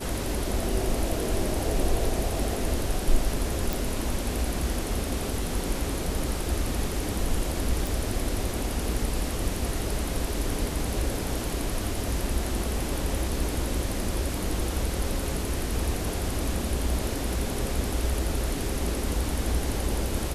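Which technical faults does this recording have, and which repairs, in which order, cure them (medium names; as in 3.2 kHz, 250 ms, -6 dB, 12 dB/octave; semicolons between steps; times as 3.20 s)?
3.73 s: pop
7.87 s: pop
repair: de-click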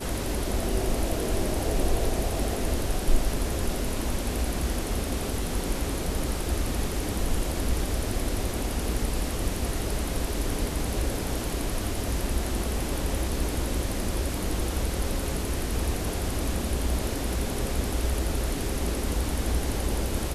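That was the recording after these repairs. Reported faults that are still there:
nothing left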